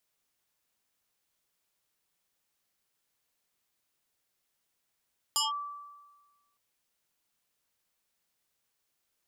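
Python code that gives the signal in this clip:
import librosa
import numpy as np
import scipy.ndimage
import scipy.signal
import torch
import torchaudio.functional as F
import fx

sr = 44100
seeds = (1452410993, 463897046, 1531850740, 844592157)

y = fx.fm2(sr, length_s=1.21, level_db=-23.5, carrier_hz=1160.0, ratio=1.76, index=4.7, index_s=0.16, decay_s=1.33, shape='linear')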